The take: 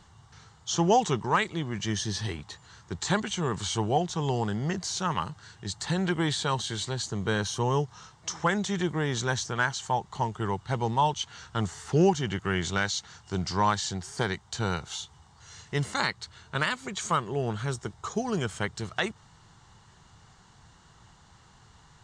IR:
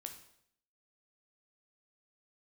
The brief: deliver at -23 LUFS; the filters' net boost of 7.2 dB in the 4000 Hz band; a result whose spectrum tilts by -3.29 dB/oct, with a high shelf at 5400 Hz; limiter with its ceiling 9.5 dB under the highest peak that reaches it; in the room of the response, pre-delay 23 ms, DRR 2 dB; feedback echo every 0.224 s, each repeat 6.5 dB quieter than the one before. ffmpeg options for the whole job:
-filter_complex "[0:a]equalizer=f=4k:t=o:g=5.5,highshelf=f=5.4k:g=8.5,alimiter=limit=-17dB:level=0:latency=1,aecho=1:1:224|448|672|896|1120|1344:0.473|0.222|0.105|0.0491|0.0231|0.0109,asplit=2[a][b];[1:a]atrim=start_sample=2205,adelay=23[c];[b][c]afir=irnorm=-1:irlink=0,volume=2dB[d];[a][d]amix=inputs=2:normalize=0,volume=3dB"

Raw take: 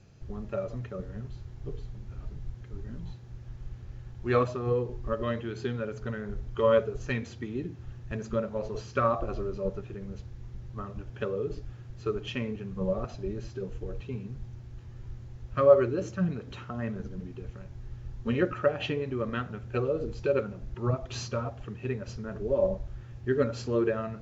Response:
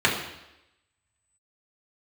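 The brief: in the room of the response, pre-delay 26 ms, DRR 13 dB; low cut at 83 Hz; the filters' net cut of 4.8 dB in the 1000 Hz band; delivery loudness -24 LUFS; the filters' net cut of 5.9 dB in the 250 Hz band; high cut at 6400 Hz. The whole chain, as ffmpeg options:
-filter_complex "[0:a]highpass=83,lowpass=6.4k,equalizer=f=250:t=o:g=-8,equalizer=f=1k:t=o:g=-6,asplit=2[a][b];[1:a]atrim=start_sample=2205,adelay=26[c];[b][c]afir=irnorm=-1:irlink=0,volume=-31dB[d];[a][d]amix=inputs=2:normalize=0,volume=10.5dB"

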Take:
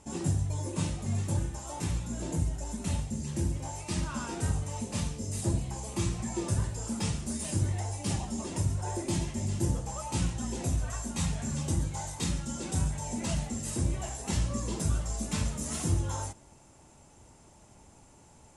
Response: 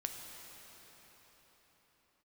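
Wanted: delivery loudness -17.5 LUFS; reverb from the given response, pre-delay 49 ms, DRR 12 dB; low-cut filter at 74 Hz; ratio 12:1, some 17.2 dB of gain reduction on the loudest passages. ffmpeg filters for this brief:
-filter_complex "[0:a]highpass=74,acompressor=threshold=-43dB:ratio=12,asplit=2[a][b];[1:a]atrim=start_sample=2205,adelay=49[c];[b][c]afir=irnorm=-1:irlink=0,volume=-12dB[d];[a][d]amix=inputs=2:normalize=0,volume=29.5dB"

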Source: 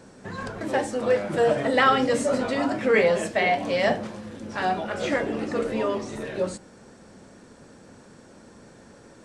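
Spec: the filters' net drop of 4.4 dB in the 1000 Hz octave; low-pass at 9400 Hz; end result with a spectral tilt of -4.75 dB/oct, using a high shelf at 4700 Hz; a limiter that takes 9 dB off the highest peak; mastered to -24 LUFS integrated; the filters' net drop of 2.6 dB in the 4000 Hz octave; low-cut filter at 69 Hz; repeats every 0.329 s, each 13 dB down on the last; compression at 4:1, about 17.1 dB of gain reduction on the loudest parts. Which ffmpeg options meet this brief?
-af "highpass=69,lowpass=9.4k,equalizer=f=1k:t=o:g=-7,equalizer=f=4k:t=o:g=-7,highshelf=f=4.7k:g=8,acompressor=threshold=-39dB:ratio=4,alimiter=level_in=10dB:limit=-24dB:level=0:latency=1,volume=-10dB,aecho=1:1:329|658|987:0.224|0.0493|0.0108,volume=19.5dB"

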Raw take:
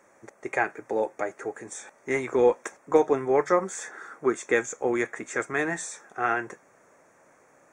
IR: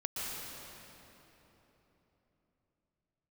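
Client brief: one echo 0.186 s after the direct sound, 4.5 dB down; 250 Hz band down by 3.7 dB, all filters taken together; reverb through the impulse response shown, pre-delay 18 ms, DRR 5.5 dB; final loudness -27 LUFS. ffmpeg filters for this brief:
-filter_complex "[0:a]equalizer=f=250:t=o:g=-6,aecho=1:1:186:0.596,asplit=2[a][b];[1:a]atrim=start_sample=2205,adelay=18[c];[b][c]afir=irnorm=-1:irlink=0,volume=-9.5dB[d];[a][d]amix=inputs=2:normalize=0,volume=-1dB"

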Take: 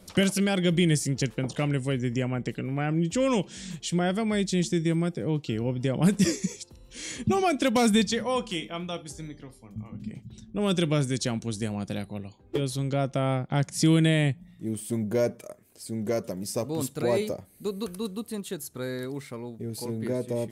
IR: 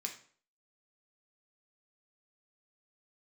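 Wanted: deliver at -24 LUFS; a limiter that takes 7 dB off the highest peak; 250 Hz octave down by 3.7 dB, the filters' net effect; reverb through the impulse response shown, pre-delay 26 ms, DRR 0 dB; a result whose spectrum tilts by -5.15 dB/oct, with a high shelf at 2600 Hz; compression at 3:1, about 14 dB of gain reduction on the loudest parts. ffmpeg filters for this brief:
-filter_complex "[0:a]equalizer=f=250:t=o:g=-5.5,highshelf=f=2.6k:g=-5.5,acompressor=threshold=-40dB:ratio=3,alimiter=level_in=8dB:limit=-24dB:level=0:latency=1,volume=-8dB,asplit=2[a][b];[1:a]atrim=start_sample=2205,adelay=26[c];[b][c]afir=irnorm=-1:irlink=0,volume=1dB[d];[a][d]amix=inputs=2:normalize=0,volume=16dB"

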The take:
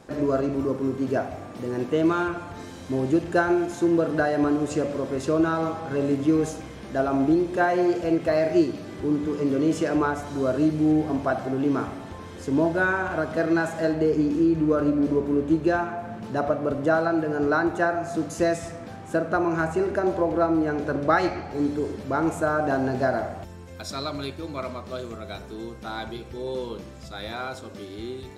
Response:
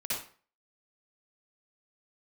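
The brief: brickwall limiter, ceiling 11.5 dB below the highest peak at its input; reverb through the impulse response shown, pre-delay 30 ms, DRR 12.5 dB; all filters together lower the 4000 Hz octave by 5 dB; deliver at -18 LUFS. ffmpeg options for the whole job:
-filter_complex "[0:a]equalizer=f=4k:t=o:g=-6,alimiter=limit=-20dB:level=0:latency=1,asplit=2[a][b];[1:a]atrim=start_sample=2205,adelay=30[c];[b][c]afir=irnorm=-1:irlink=0,volume=-17dB[d];[a][d]amix=inputs=2:normalize=0,volume=11dB"

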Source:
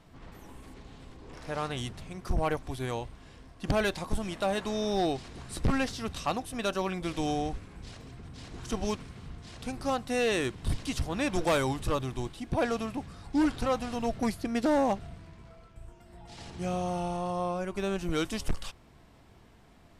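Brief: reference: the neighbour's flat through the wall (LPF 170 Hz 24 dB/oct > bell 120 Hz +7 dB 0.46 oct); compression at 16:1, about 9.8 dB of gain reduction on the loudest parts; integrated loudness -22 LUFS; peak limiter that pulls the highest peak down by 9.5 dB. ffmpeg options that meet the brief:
-af "acompressor=threshold=-32dB:ratio=16,alimiter=level_in=8dB:limit=-24dB:level=0:latency=1,volume=-8dB,lowpass=f=170:w=0.5412,lowpass=f=170:w=1.3066,equalizer=f=120:t=o:w=0.46:g=7,volume=25.5dB"

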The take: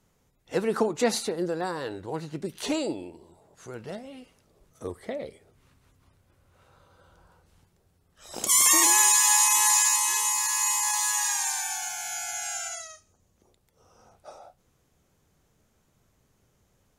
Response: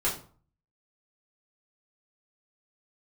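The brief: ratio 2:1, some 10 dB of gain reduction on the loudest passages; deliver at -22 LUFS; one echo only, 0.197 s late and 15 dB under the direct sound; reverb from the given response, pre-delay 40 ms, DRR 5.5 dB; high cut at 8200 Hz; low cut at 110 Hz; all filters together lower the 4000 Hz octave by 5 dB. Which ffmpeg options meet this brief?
-filter_complex "[0:a]highpass=110,lowpass=8.2k,equalizer=f=4k:t=o:g=-6.5,acompressor=threshold=-37dB:ratio=2,aecho=1:1:197:0.178,asplit=2[a][b];[1:a]atrim=start_sample=2205,adelay=40[c];[b][c]afir=irnorm=-1:irlink=0,volume=-14.5dB[d];[a][d]amix=inputs=2:normalize=0,volume=11.5dB"

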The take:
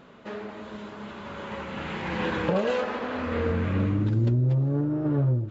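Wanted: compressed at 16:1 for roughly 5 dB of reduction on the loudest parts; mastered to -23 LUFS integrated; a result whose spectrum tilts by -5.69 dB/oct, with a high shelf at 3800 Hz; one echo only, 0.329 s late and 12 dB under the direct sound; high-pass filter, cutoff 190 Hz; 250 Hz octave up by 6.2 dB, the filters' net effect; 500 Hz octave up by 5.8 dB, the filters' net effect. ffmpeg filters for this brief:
-af "highpass=190,equalizer=f=250:t=o:g=8.5,equalizer=f=500:t=o:g=4.5,highshelf=f=3.8k:g=-4,acompressor=threshold=-21dB:ratio=16,aecho=1:1:329:0.251,volume=4.5dB"

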